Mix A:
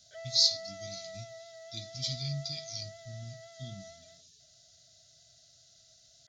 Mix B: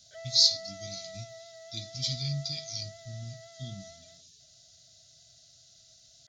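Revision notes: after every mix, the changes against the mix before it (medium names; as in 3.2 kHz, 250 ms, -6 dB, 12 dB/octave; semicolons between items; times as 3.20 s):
speech +3.0 dB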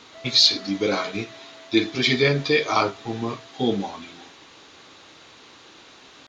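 speech: remove Chebyshev band-stop 130–5100 Hz, order 3; master: add bass shelf 250 Hz +5 dB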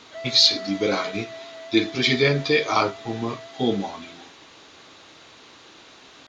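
background +8.5 dB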